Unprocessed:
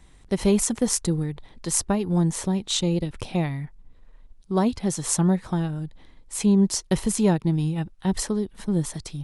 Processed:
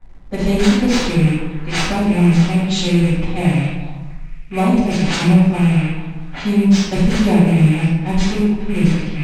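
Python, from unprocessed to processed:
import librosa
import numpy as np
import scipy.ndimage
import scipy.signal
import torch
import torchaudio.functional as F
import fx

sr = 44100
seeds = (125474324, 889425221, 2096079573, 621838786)

p1 = fx.rattle_buzz(x, sr, strikes_db=-32.0, level_db=-22.0)
p2 = np.repeat(p1[::4], 4)[:len(p1)]
p3 = p2 + fx.echo_stepped(p2, sr, ms=218, hz=580.0, octaves=0.7, feedback_pct=70, wet_db=-10, dry=0)
p4 = fx.env_lowpass(p3, sr, base_hz=1400.0, full_db=-19.5)
p5 = fx.room_shoebox(p4, sr, seeds[0], volume_m3=320.0, walls='mixed', distance_m=7.7)
p6 = fx.quant_dither(p5, sr, seeds[1], bits=6, dither='none')
p7 = p5 + (p6 * 10.0 ** (-10.0 / 20.0))
p8 = scipy.signal.sosfilt(scipy.signal.butter(2, 8400.0, 'lowpass', fs=sr, output='sos'), p7)
y = p8 * 10.0 ** (-12.5 / 20.0)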